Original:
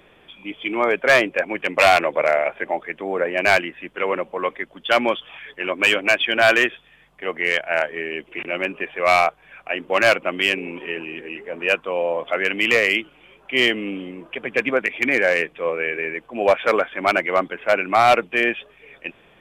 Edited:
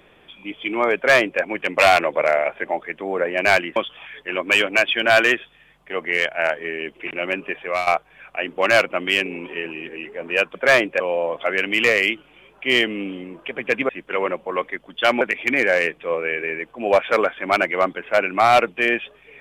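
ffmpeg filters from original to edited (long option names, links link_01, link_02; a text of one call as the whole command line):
ffmpeg -i in.wav -filter_complex "[0:a]asplit=7[link_01][link_02][link_03][link_04][link_05][link_06][link_07];[link_01]atrim=end=3.762[link_08];[link_02]atrim=start=5.078:end=9.19,asetpts=PTS-STARTPTS,afade=type=out:start_time=3.842:duration=0.27:silence=0.199526[link_09];[link_03]atrim=start=9.19:end=11.872,asetpts=PTS-STARTPTS,afade=type=in:duration=0.004:curve=hsin:silence=0.199526[link_10];[link_04]atrim=start=0.958:end=1.412[link_11];[link_05]atrim=start=11.868:end=14.762[link_12];[link_06]atrim=start=3.758:end=5.082[link_13];[link_07]atrim=start=14.758[link_14];[link_09][link_10]concat=n=2:v=0:a=1[link_15];[link_08][link_15]acrossfade=duration=0.004:curve1=hsin:curve2=hsin[link_16];[link_16][link_11]acrossfade=duration=0.004:curve1=hsin:curve2=hsin[link_17];[link_17][link_12]acrossfade=duration=0.004:curve1=hsin:curve2=hsin[link_18];[link_18][link_13]acrossfade=duration=0.004:curve1=hsin:curve2=hsin[link_19];[link_19][link_14]acrossfade=duration=0.004:curve1=hsin:curve2=hsin" out.wav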